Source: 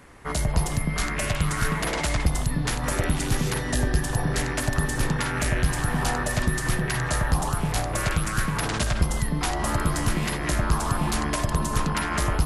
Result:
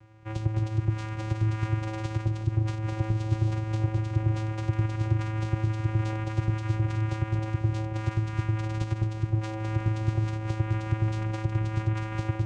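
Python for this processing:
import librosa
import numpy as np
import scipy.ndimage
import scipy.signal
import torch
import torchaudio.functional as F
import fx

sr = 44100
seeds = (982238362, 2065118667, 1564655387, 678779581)

y = fx.vocoder(x, sr, bands=4, carrier='square', carrier_hz=109.0)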